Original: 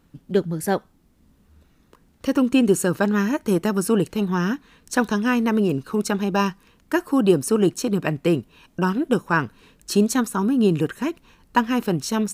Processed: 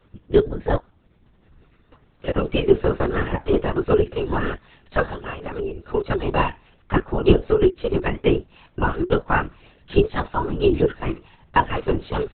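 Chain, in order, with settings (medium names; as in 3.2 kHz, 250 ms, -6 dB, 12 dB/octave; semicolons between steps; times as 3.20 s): comb 2.2 ms, depth 83%; 5.05–5.94 s: compression 4:1, threshold -29 dBFS, peak gain reduction 11 dB; flange 1.3 Hz, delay 4.9 ms, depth 7.9 ms, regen +73%; LPC vocoder at 8 kHz whisper; trim +4 dB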